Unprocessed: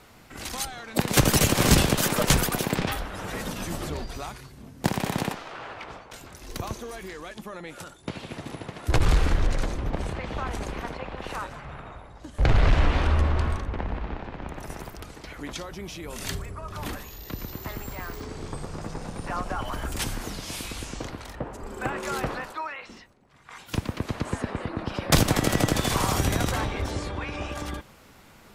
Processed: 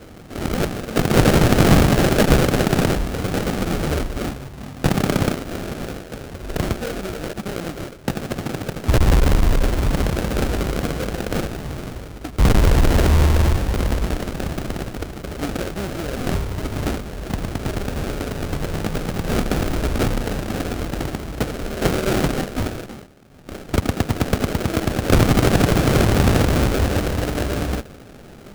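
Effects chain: added harmonics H 2 -9 dB, 5 -12 dB, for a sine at -10 dBFS; sample-rate reducer 1000 Hz, jitter 20%; gain +4 dB

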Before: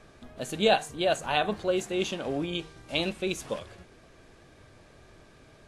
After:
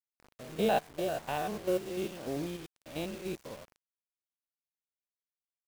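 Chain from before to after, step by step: stepped spectrum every 0.1 s; LPF 3500 Hz 6 dB/oct; high shelf 2400 Hz -10.5 dB; bit-crush 7-bit; upward expander 1.5:1, over -48 dBFS

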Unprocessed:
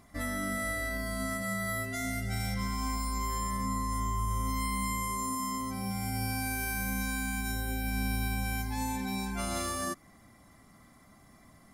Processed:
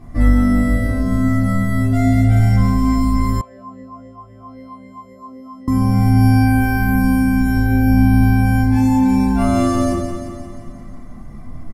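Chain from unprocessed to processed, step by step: tilt -3 dB/oct; feedback echo 0.176 s, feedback 59%, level -7.5 dB; reverb RT60 0.40 s, pre-delay 3 ms, DRR -6 dB; 3.41–5.68 vowel sweep a-e 3.8 Hz; gain +4.5 dB

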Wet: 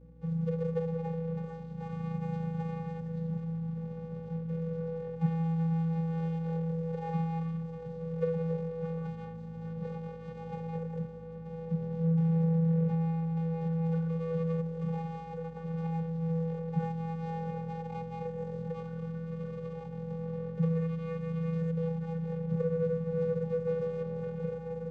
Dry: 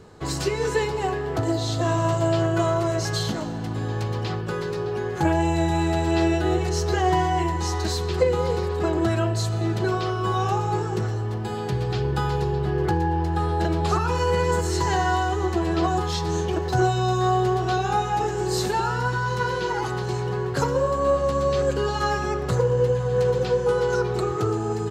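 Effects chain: median filter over 41 samples; vocoder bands 16, square 164 Hz; hum 60 Hz, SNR 23 dB; gain -6.5 dB

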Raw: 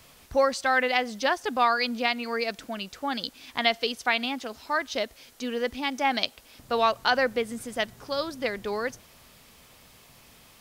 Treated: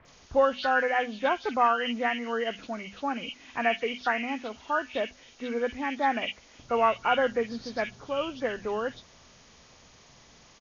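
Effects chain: nonlinear frequency compression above 1300 Hz 1.5:1; notches 50/100/150/200/250 Hz; bands offset in time lows, highs 50 ms, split 2400 Hz

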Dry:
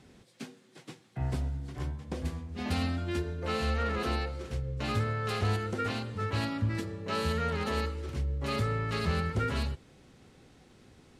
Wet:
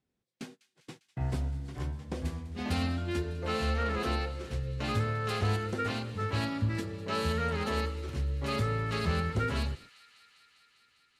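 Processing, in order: gate -48 dBFS, range -27 dB; on a send: thin delay 0.2 s, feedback 80%, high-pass 2200 Hz, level -17 dB

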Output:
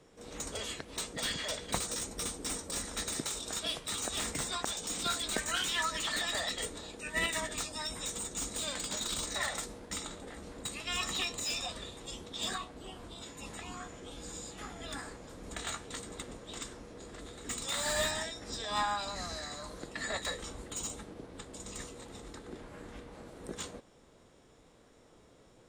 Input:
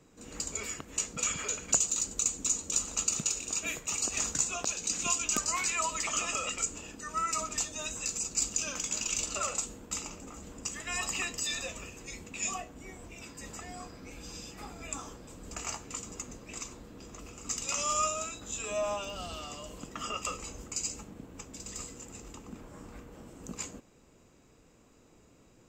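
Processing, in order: resonant high shelf 7600 Hz -13.5 dB, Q 1.5; formant shift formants +6 st; slew limiter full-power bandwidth 130 Hz

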